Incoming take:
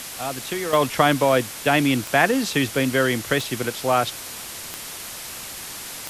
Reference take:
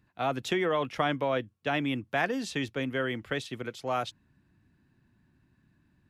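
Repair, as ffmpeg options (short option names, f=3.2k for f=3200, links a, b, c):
-af "adeclick=t=4,afwtdn=0.022,asetnsamples=n=441:p=0,asendcmd='0.73 volume volume -10.5dB',volume=0dB"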